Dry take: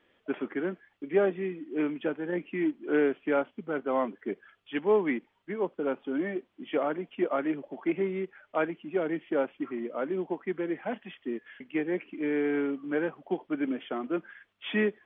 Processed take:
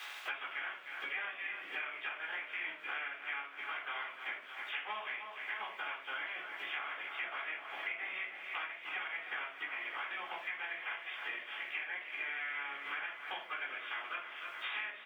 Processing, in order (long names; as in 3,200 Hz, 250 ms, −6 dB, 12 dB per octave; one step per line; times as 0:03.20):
ceiling on every frequency bin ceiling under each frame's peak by 26 dB
high-pass filter 1,400 Hz 12 dB per octave
downward compressor 2 to 1, threshold −43 dBFS, peak gain reduction 11 dB
repeating echo 305 ms, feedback 57%, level −12 dB
rectangular room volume 310 cubic metres, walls furnished, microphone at 3.8 metres
multiband upward and downward compressor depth 100%
level −6.5 dB